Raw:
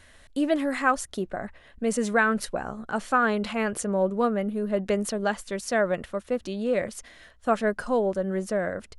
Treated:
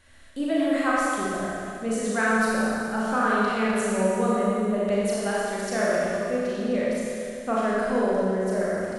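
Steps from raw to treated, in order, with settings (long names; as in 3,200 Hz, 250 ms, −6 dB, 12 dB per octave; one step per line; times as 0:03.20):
four-comb reverb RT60 2.5 s, combs from 28 ms, DRR −7 dB
level −6 dB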